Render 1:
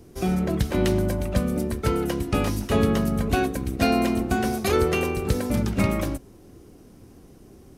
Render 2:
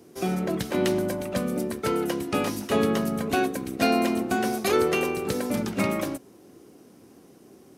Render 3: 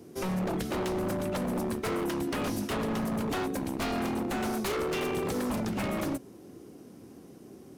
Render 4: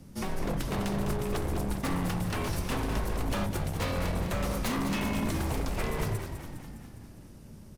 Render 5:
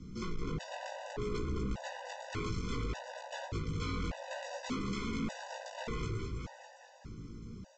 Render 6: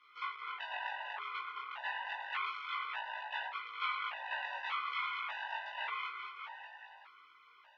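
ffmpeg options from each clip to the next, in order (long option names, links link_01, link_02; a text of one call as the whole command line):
ffmpeg -i in.wav -af "highpass=210" out.wav
ffmpeg -i in.wav -af "lowshelf=frequency=340:gain=7,acompressor=threshold=-22dB:ratio=10,aeval=exprs='0.0631*(abs(mod(val(0)/0.0631+3,4)-2)-1)':channel_layout=same,volume=-1.5dB" out.wav
ffmpeg -i in.wav -filter_complex "[0:a]afreqshift=-170,asplit=2[link_01][link_02];[link_02]asplit=8[link_03][link_04][link_05][link_06][link_07][link_08][link_09][link_10];[link_03]adelay=204,afreqshift=-55,volume=-8dB[link_11];[link_04]adelay=408,afreqshift=-110,volume=-12.3dB[link_12];[link_05]adelay=612,afreqshift=-165,volume=-16.6dB[link_13];[link_06]adelay=816,afreqshift=-220,volume=-20.9dB[link_14];[link_07]adelay=1020,afreqshift=-275,volume=-25.2dB[link_15];[link_08]adelay=1224,afreqshift=-330,volume=-29.5dB[link_16];[link_09]adelay=1428,afreqshift=-385,volume=-33.8dB[link_17];[link_10]adelay=1632,afreqshift=-440,volume=-38.1dB[link_18];[link_11][link_12][link_13][link_14][link_15][link_16][link_17][link_18]amix=inputs=8:normalize=0[link_19];[link_01][link_19]amix=inputs=2:normalize=0" out.wav
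ffmpeg -i in.wav -af "aresample=16000,asoftclip=type=tanh:threshold=-35.5dB,aresample=44100,flanger=delay=16:depth=2.8:speed=0.64,afftfilt=real='re*gt(sin(2*PI*0.85*pts/sr)*(1-2*mod(floor(b*sr/1024/500),2)),0)':imag='im*gt(sin(2*PI*0.85*pts/sr)*(1-2*mod(floor(b*sr/1024/500),2)),0)':win_size=1024:overlap=0.75,volume=6dB" out.wav
ffmpeg -i in.wav -af "flanger=delay=18.5:depth=4.8:speed=0.28,asuperpass=centerf=1700:order=8:qfactor=0.71,volume=10.5dB" out.wav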